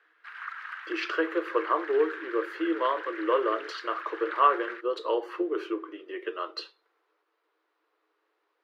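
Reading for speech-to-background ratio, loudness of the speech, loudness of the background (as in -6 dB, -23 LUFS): 10.5 dB, -29.0 LUFS, -39.5 LUFS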